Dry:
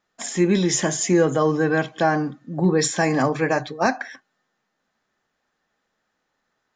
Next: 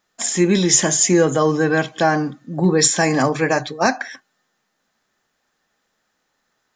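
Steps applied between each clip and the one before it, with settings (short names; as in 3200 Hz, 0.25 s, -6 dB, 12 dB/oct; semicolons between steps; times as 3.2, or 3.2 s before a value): high shelf 4400 Hz +9 dB; gain +2.5 dB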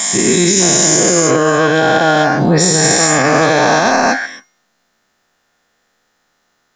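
spectral dilation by 0.48 s; resonator 710 Hz, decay 0.42 s, mix 70%; maximiser +12 dB; gain -1 dB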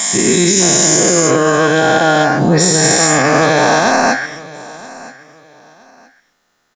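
feedback echo 0.972 s, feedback 26%, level -20 dB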